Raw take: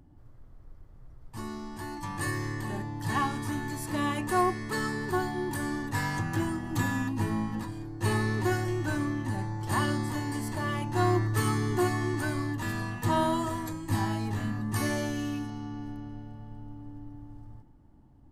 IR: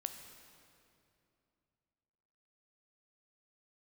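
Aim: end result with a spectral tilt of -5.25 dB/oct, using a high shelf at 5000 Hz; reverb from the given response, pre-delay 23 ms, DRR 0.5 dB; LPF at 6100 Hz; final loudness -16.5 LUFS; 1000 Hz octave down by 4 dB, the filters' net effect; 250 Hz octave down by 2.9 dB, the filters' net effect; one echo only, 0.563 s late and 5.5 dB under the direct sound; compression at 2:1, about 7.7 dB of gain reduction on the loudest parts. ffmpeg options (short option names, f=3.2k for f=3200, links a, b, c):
-filter_complex "[0:a]lowpass=6.1k,equalizer=f=250:t=o:g=-3.5,equalizer=f=1k:t=o:g=-4.5,highshelf=f=5k:g=-6,acompressor=threshold=-38dB:ratio=2,aecho=1:1:563:0.531,asplit=2[a][b];[1:a]atrim=start_sample=2205,adelay=23[c];[b][c]afir=irnorm=-1:irlink=0,volume=1dB[d];[a][d]amix=inputs=2:normalize=0,volume=19.5dB"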